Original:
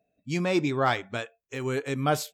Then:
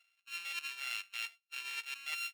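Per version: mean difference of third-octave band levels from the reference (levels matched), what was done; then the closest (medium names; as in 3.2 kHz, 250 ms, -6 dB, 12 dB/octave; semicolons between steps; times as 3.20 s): 19.0 dB: sorted samples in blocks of 32 samples; resonant high-pass 2.5 kHz, resonance Q 2.8; treble shelf 8.9 kHz -6 dB; reverse; compression 8:1, threshold -41 dBFS, peak gain reduction 20 dB; reverse; trim +3.5 dB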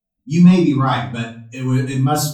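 9.0 dB: expander on every frequency bin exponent 1.5; graphic EQ 125/250/500/1000/2000/8000 Hz +4/+6/-11/+7/-9/+3 dB; in parallel at -2 dB: compressor with a negative ratio -30 dBFS; on the sum: simulated room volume 34 m³, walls mixed, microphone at 1.8 m; trim -3.5 dB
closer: second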